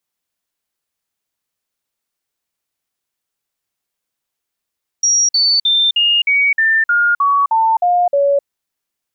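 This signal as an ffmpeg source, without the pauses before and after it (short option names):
-f lavfi -i "aevalsrc='0.316*clip(min(mod(t,0.31),0.26-mod(t,0.31))/0.005,0,1)*sin(2*PI*5680*pow(2,-floor(t/0.31)/3)*mod(t,0.31))':d=3.41:s=44100"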